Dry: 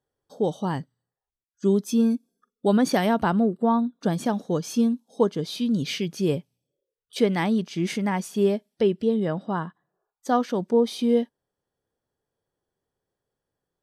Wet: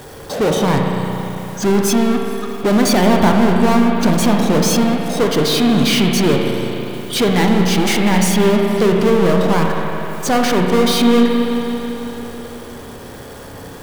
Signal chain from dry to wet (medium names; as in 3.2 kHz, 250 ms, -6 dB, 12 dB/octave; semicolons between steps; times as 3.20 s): power-law waveshaper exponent 0.35; spring tank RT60 3.8 s, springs 33/55 ms, chirp 45 ms, DRR 1 dB; trim -1 dB